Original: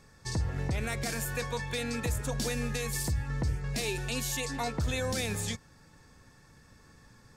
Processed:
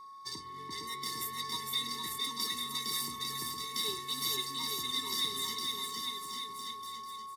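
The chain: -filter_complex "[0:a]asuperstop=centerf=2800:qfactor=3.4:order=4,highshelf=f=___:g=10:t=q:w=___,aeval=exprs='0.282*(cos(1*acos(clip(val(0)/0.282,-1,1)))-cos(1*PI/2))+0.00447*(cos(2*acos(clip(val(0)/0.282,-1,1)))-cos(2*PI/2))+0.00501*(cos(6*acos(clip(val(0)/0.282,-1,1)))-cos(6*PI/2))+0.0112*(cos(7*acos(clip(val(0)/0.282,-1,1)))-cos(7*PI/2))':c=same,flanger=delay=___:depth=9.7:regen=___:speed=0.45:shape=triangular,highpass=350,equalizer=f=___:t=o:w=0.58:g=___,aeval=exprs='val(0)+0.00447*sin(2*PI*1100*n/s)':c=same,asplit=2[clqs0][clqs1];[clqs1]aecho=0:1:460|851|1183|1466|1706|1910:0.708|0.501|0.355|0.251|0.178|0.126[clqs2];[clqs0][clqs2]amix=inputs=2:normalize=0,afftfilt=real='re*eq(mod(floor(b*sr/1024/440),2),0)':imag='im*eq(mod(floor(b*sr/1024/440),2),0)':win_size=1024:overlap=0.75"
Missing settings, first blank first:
2.2k, 3, 4.2, -81, 7k, -11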